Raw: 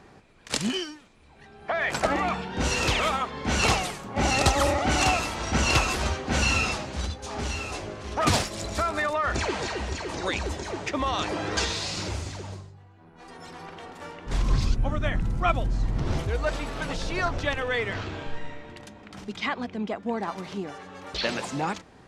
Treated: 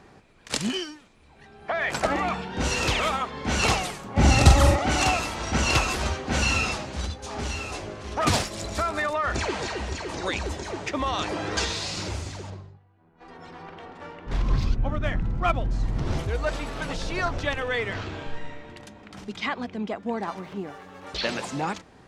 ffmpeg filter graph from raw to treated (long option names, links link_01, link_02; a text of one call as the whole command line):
ffmpeg -i in.wav -filter_complex "[0:a]asettb=1/sr,asplit=3[link_01][link_02][link_03];[link_01]atrim=end=4.174[link_04];[link_02]atrim=start=4.17:end=4.76,asetpts=PTS-STARTPTS,afade=type=in:duration=0.004:curve=qsin,afade=type=out:start_time=0.586:duration=0.004:curve=qsin,bass=frequency=250:gain=10,treble=frequency=4000:gain=1,asplit=2[link_05][link_06];[link_06]adelay=43,volume=-6dB[link_07];[link_05][link_07]amix=inputs=2:normalize=0,atrim=end_sample=26019[link_08];[link_03]atrim=start=4.756[link_09];[link_04][link_08]acrossfade=duration=0.004:curve1=hsin:curve2=qsin[link_10];[link_10][link_09]acrossfade=duration=0.004:curve1=qsin:curve2=hsin,asettb=1/sr,asplit=3[link_11][link_12][link_13];[link_11]atrim=end=12.504[link_14];[link_12]atrim=start=12.5:end=15.71,asetpts=PTS-STARTPTS,afade=type=in:duration=0.004:curve=qsin,afade=type=out:start_time=3.206:duration=0.004:curve=qsin,agate=range=-8dB:threshold=-49dB:ratio=16:release=100:detection=peak,adynamicsmooth=sensitivity=4:basefreq=3900[link_15];[link_13]atrim=start=15.706[link_16];[link_14][link_15]acrossfade=duration=0.004:curve1=hsin:curve2=qsin[link_17];[link_17][link_16]acrossfade=duration=0.004:curve1=qsin:curve2=hsin,asettb=1/sr,asplit=3[link_18][link_19][link_20];[link_18]atrim=end=20.384[link_21];[link_19]atrim=start=20.38:end=21.03,asetpts=PTS-STARTPTS,afade=type=in:duration=0.004:curve=qsin,afade=type=out:start_time=0.646:duration=0.004:curve=qsin,acrossover=split=2700[link_22][link_23];[link_23]acompressor=threshold=-58dB:ratio=4:attack=1:release=60[link_24];[link_22][link_24]amix=inputs=2:normalize=0,aeval=exprs='sgn(val(0))*max(abs(val(0))-0.0015,0)':channel_layout=same[link_25];[link_20]atrim=start=21.026[link_26];[link_21][link_25]acrossfade=duration=0.004:curve1=hsin:curve2=qsin[link_27];[link_27][link_26]acrossfade=duration=0.004:curve1=qsin:curve2=hsin" out.wav